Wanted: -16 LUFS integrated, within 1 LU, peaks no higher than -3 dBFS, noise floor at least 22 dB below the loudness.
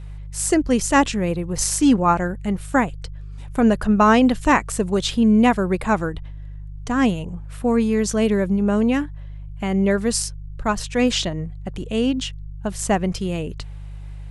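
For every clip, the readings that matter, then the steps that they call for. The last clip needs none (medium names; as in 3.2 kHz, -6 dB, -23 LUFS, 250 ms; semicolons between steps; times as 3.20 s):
hum 50 Hz; highest harmonic 150 Hz; hum level -31 dBFS; loudness -20.0 LUFS; peak level -3.0 dBFS; loudness target -16.0 LUFS
-> de-hum 50 Hz, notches 3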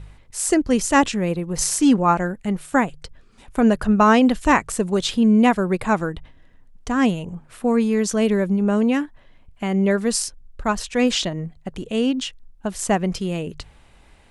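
hum not found; loudness -20.5 LUFS; peak level -3.5 dBFS; loudness target -16.0 LUFS
-> trim +4.5 dB; peak limiter -3 dBFS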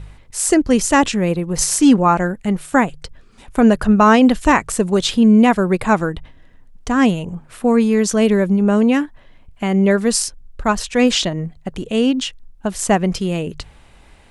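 loudness -16.0 LUFS; peak level -3.0 dBFS; noise floor -47 dBFS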